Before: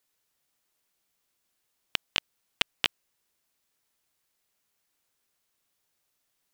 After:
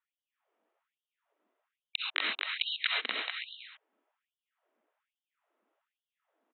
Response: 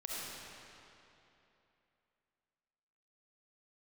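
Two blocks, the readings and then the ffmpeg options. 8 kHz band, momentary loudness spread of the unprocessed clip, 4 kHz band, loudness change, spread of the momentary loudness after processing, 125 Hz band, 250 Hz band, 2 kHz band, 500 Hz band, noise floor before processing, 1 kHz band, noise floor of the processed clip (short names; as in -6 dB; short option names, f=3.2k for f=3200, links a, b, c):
under -30 dB, 6 LU, -0.5 dB, -1.5 dB, 13 LU, under -20 dB, -4.5 dB, +2.5 dB, -2.0 dB, -78 dBFS, +1.0 dB, under -85 dBFS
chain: -filter_complex "[0:a]adynamicsmooth=sensitivity=4:basefreq=950,aresample=8000,aeval=exprs='0.501*sin(PI/2*4.47*val(0)/0.501)':c=same,aresample=44100,afreqshift=-24,aecho=1:1:250|437.5|578.1|683.6|762.7:0.631|0.398|0.251|0.158|0.1[a];[1:a]atrim=start_sample=2205,afade=t=out:st=0.19:d=0.01,atrim=end_sample=8820[b];[a][b]afir=irnorm=-1:irlink=0,afftfilt=real='re*gte(b*sr/1024,210*pow(2900/210,0.5+0.5*sin(2*PI*1.2*pts/sr)))':imag='im*gte(b*sr/1024,210*pow(2900/210,0.5+0.5*sin(2*PI*1.2*pts/sr)))':win_size=1024:overlap=0.75,volume=-3.5dB"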